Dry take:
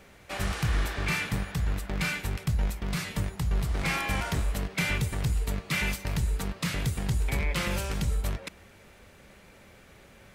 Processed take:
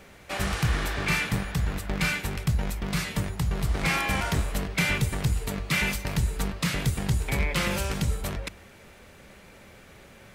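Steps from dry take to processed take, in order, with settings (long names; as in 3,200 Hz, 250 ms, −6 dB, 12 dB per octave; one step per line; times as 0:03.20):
mains-hum notches 50/100 Hz
level +3.5 dB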